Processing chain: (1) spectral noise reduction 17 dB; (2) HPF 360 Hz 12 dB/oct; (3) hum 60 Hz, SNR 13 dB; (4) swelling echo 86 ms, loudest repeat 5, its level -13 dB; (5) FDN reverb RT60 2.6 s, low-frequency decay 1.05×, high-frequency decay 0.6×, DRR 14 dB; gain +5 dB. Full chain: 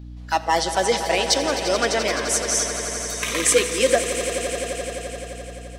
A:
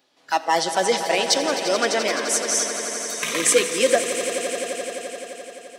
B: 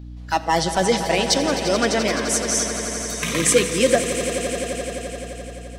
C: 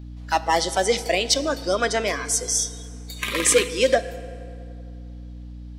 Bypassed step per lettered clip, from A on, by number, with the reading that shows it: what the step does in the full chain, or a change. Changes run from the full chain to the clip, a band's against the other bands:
3, 125 Hz band -9.5 dB; 2, 250 Hz band +6.5 dB; 4, echo-to-direct -3.0 dB to -14.0 dB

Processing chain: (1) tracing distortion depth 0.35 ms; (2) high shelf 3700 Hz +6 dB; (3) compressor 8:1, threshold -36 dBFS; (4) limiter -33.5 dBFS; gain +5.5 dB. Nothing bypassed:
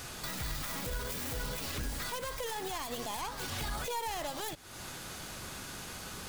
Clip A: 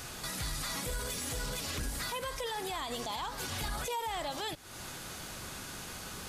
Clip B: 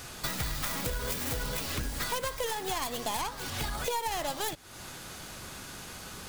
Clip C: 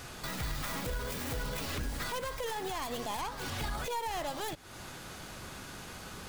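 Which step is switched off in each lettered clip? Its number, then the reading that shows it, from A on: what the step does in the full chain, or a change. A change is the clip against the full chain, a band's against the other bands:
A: 1, 4 kHz band +1.5 dB; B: 4, mean gain reduction 2.5 dB; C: 2, 8 kHz band -4.5 dB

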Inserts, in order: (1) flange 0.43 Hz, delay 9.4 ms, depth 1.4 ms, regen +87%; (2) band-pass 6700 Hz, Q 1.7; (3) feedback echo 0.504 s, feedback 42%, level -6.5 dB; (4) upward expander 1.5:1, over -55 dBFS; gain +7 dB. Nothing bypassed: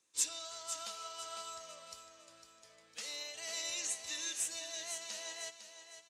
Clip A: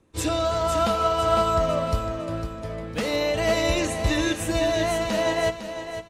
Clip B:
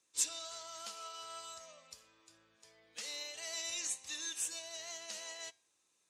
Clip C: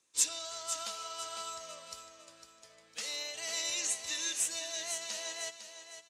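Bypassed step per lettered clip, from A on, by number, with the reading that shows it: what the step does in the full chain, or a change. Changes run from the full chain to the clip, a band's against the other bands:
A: 2, 8 kHz band -22.5 dB; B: 3, momentary loudness spread change -2 LU; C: 1, loudness change +4.5 LU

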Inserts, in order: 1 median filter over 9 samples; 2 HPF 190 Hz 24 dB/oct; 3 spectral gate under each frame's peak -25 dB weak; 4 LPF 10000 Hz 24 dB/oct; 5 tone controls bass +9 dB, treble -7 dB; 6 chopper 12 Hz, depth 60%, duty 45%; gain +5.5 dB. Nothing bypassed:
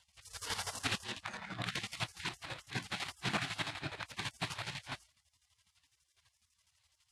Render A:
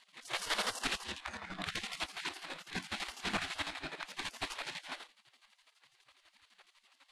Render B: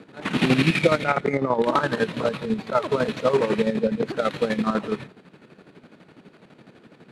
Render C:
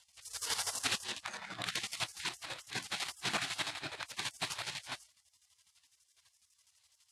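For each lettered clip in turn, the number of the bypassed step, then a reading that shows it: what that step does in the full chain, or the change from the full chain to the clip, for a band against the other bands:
2, 125 Hz band -10.0 dB; 3, 500 Hz band +13.0 dB; 5, loudness change +2.0 LU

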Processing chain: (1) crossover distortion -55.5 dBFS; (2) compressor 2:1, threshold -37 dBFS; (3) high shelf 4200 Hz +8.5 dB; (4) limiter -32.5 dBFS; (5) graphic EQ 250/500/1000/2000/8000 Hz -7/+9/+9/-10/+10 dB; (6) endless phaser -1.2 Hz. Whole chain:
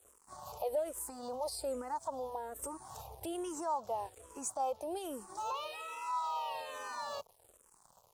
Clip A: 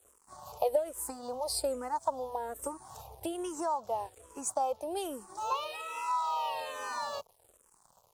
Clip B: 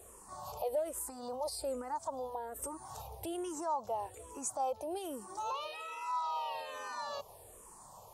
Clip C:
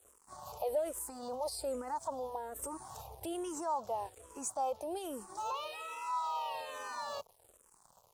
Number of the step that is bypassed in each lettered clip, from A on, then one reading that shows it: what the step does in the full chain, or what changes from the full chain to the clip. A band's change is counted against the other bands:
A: 4, mean gain reduction 2.5 dB; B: 1, distortion -25 dB; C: 2, mean gain reduction 3.5 dB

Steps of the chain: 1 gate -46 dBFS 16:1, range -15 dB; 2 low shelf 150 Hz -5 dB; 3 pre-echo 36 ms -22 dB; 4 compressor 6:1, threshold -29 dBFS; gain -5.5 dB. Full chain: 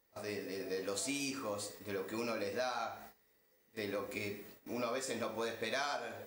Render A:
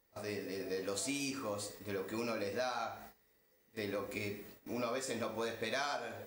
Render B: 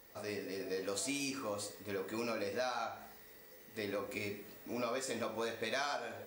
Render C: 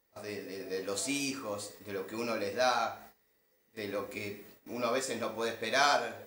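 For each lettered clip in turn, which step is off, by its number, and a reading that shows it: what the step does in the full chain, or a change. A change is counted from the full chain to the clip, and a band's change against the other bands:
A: 2, 125 Hz band +3.0 dB; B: 1, momentary loudness spread change +4 LU; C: 4, mean gain reduction 3.0 dB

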